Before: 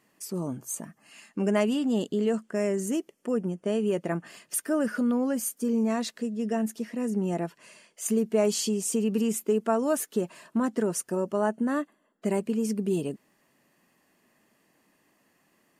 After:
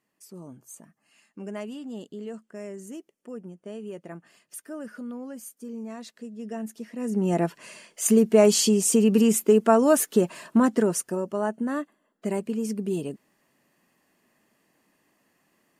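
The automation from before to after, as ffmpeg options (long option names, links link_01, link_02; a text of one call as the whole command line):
ffmpeg -i in.wav -af "volume=7dB,afade=type=in:start_time=5.97:duration=0.98:silence=0.446684,afade=type=in:start_time=6.95:duration=0.5:silence=0.281838,afade=type=out:start_time=10.58:duration=0.64:silence=0.398107" out.wav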